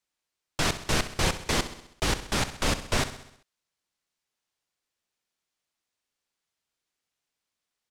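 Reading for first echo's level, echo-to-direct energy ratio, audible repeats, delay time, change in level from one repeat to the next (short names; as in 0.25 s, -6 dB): -13.0 dB, -11.5 dB, 5, 65 ms, -5.0 dB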